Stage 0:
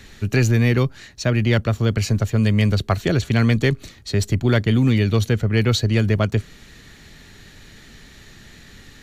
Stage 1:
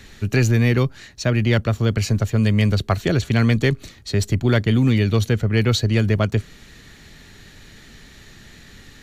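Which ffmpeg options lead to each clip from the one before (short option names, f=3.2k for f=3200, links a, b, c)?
-af anull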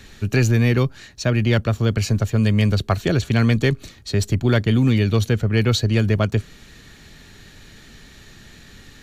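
-af "bandreject=f=2k:w=18"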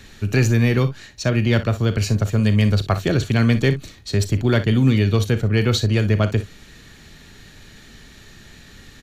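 -af "aecho=1:1:38|60:0.2|0.2"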